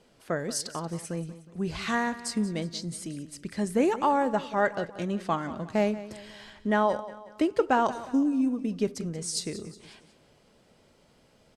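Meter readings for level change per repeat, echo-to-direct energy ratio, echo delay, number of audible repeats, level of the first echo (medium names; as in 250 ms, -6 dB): -7.0 dB, -14.5 dB, 182 ms, 3, -15.5 dB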